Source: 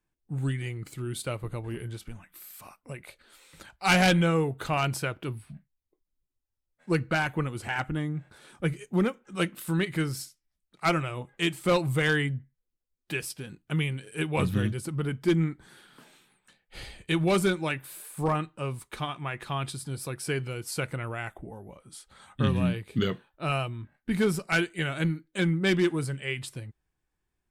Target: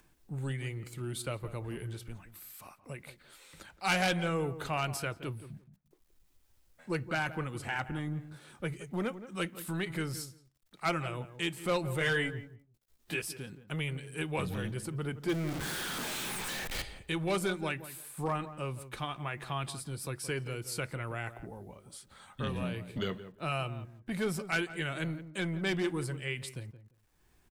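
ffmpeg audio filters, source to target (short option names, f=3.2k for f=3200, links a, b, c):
-filter_complex "[0:a]asettb=1/sr,asplit=3[a][b][c];[a]atrim=end=15.294[d];[b]atrim=start=15.29:end=16.82,asetpts=PTS-STARTPTS,afade=t=in:d=0.004:c=qsin,afade=t=out:st=1.526:d=0.004:c=qsin,aeval=exprs='val(0)+0.5*0.0376*sgn(val(0))':c=same[e];[c]atrim=start=16.816[f];[d][e]acrossfade=d=0.004:c1=hsin:c2=qsin[g];[g][f]acrossfade=d=0.004:c1=qsin:c2=hsin,asplit=2[h][i];[i]alimiter=limit=-22.5dB:level=0:latency=1:release=115,volume=0dB[j];[h][j]amix=inputs=2:normalize=0,acompressor=mode=upward:threshold=-41dB:ratio=2.5,acrossover=split=380|3800[k][l][m];[k]asoftclip=type=tanh:threshold=-24dB[n];[n][l][m]amix=inputs=3:normalize=0,acrusher=bits=10:mix=0:aa=0.000001,asettb=1/sr,asplit=3[o][p][q];[o]atrim=end=11.994[r];[p]atrim=start=11.99:end=13.22,asetpts=PTS-STARTPTS,afade=t=in:d=0.004:c=qsin,afade=t=out:st=1.226:d=0.004:c=qsin,asplit=2[s][t];[t]adelay=18,volume=-3dB[u];[s][u]amix=inputs=2:normalize=0,atrim=end_sample=54243[v];[q]atrim=start=13.216[w];[r][v]acrossfade=d=0.004:c1=hsin:c2=qsin[x];[x][w]acrossfade=d=0.004:c1=qsin:c2=hsin,asplit=2[y][z];[z]adelay=172,lowpass=f=1.2k:p=1,volume=-12dB,asplit=2[aa][ab];[ab]adelay=172,lowpass=f=1.2k:p=1,volume=0.17[ac];[y][aa][ac]amix=inputs=3:normalize=0,volume=-9dB"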